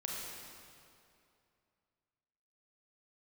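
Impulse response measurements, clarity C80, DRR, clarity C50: 0.0 dB, -3.0 dB, -1.5 dB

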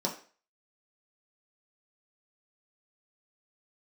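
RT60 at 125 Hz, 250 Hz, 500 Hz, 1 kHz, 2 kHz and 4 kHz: 0.25 s, 0.35 s, 0.40 s, 0.40 s, 0.40 s, 0.40 s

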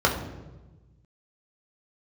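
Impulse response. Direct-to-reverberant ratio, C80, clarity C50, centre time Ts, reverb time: -3.0 dB, 9.5 dB, 7.0 dB, 28 ms, 1.1 s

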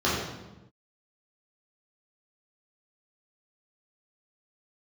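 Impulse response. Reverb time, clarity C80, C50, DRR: 1.0 s, 3.0 dB, 0.5 dB, -8.5 dB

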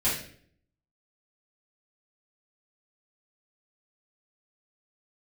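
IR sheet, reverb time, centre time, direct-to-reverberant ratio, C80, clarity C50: 0.55 s, 43 ms, -12.5 dB, 8.5 dB, 3.5 dB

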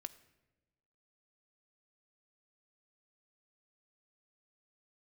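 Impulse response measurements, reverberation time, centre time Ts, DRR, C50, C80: 1.1 s, 4 ms, 9.5 dB, 16.5 dB, 18.0 dB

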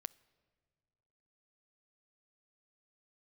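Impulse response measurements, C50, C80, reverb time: 22.5 dB, 24.5 dB, 2.0 s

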